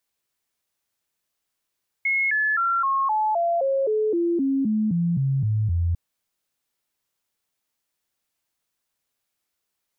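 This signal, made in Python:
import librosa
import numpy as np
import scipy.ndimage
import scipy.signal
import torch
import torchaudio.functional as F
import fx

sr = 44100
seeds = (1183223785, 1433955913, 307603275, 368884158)

y = fx.stepped_sweep(sr, from_hz=2170.0, direction='down', per_octave=3, tones=15, dwell_s=0.26, gap_s=0.0, level_db=-19.0)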